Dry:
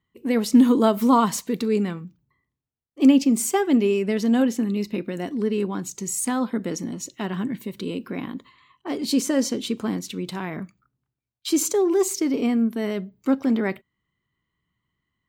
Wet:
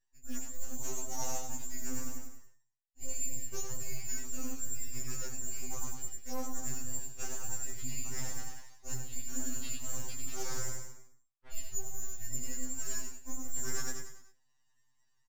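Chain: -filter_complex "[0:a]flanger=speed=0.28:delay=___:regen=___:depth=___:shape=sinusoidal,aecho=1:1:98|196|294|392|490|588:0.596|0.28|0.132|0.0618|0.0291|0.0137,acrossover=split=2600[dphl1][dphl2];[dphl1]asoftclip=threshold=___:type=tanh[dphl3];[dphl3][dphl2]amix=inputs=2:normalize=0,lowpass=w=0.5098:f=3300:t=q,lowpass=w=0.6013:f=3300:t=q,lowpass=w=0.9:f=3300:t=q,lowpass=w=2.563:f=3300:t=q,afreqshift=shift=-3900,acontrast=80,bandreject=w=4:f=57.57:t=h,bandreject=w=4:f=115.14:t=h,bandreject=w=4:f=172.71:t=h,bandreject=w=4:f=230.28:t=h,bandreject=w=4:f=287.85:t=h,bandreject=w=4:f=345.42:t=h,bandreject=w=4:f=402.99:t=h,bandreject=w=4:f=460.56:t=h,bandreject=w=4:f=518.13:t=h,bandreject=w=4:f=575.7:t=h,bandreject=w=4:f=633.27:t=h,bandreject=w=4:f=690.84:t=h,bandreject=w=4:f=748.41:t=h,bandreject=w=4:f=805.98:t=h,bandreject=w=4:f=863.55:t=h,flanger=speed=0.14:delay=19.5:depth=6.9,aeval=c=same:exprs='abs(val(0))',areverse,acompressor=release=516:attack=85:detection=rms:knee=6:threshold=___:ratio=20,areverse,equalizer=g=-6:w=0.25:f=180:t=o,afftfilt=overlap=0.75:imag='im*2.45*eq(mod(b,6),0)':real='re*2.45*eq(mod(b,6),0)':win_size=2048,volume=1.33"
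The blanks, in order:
5.2, -69, 6.7, 0.15, 0.0224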